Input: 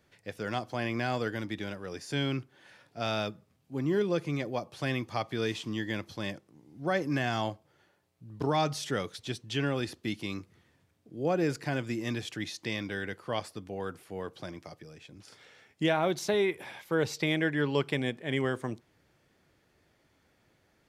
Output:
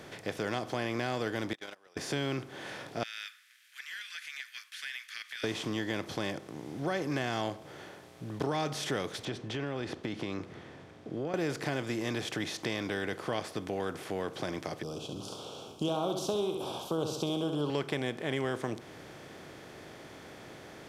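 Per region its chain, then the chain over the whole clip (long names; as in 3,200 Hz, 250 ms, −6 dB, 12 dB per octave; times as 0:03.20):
0:01.53–0:01.97: high-pass filter 770 Hz + high-shelf EQ 2,600 Hz +4 dB + noise gate −40 dBFS, range −42 dB
0:03.03–0:05.44: Butterworth high-pass 1,600 Hz 72 dB per octave + parametric band 5,800 Hz −8.5 dB 1.7 octaves + downward compressor 2 to 1, threshold −48 dBFS
0:09.25–0:11.34: downward compressor 4 to 1, threshold −36 dBFS + head-to-tape spacing loss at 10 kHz 21 dB
0:14.83–0:17.70: Chebyshev band-stop filter 1,200–3,000 Hz, order 3 + flutter between parallel walls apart 11.6 metres, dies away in 0.41 s
whole clip: compressor on every frequency bin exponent 0.6; downward compressor 2 to 1, threshold −33 dBFS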